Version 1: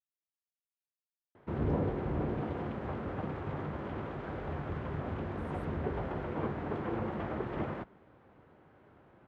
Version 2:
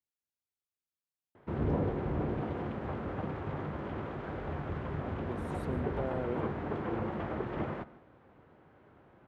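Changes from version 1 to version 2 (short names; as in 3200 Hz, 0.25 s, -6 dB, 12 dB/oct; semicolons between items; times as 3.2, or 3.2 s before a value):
speech +10.5 dB; reverb: on, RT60 0.45 s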